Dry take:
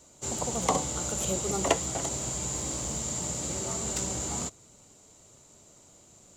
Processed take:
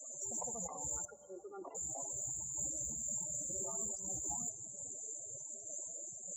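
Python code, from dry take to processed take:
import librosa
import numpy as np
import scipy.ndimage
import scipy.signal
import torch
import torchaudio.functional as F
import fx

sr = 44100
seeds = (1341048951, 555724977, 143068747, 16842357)

y = fx.low_shelf(x, sr, hz=440.0, db=-10.0)
y = fx.over_compress(y, sr, threshold_db=-43.0, ratio=-1.0)
y = fx.spec_topn(y, sr, count=32)
y = 10.0 ** (-33.5 / 20.0) * np.tanh(y / 10.0 ** (-33.5 / 20.0))
y = fx.cabinet(y, sr, low_hz=300.0, low_slope=24, high_hz=2000.0, hz=(330.0, 580.0, 1400.0), db=(7, -6, 3), at=(1.05, 1.75))
y = fx.rev_plate(y, sr, seeds[0], rt60_s=4.0, hf_ratio=0.8, predelay_ms=0, drr_db=19.0)
y = fx.am_noise(y, sr, seeds[1], hz=5.7, depth_pct=55)
y = F.gain(torch.from_numpy(y), 7.0).numpy()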